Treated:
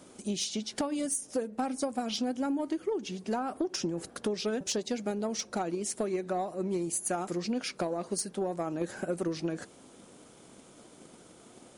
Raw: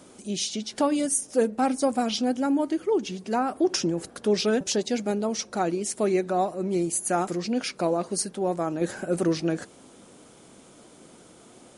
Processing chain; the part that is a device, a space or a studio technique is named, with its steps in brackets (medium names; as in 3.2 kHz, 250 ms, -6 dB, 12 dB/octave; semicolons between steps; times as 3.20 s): drum-bus smash (transient shaper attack +6 dB, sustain 0 dB; compression 10:1, threshold -23 dBFS, peak gain reduction 12 dB; saturation -17 dBFS, distortion -22 dB); trim -3.5 dB